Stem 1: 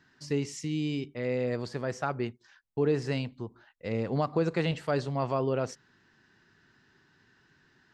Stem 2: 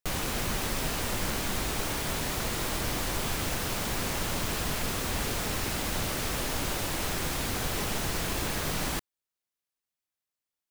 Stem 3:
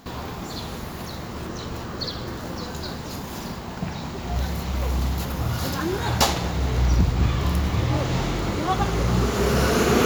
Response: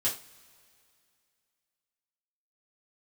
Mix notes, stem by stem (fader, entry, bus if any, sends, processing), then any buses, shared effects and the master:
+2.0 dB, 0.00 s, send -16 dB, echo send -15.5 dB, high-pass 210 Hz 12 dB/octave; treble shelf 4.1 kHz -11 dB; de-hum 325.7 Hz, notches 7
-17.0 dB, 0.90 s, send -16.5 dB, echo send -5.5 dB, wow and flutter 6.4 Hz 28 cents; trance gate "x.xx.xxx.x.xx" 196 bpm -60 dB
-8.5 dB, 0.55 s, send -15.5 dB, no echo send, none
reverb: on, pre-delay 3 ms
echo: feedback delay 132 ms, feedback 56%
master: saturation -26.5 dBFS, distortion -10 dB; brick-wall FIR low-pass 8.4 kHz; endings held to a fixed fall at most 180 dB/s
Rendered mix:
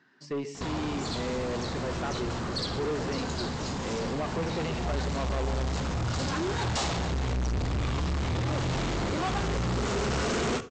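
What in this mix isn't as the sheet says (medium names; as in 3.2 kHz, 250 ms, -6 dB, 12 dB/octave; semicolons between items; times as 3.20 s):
stem 3 -8.5 dB -> +1.5 dB; reverb return -8.5 dB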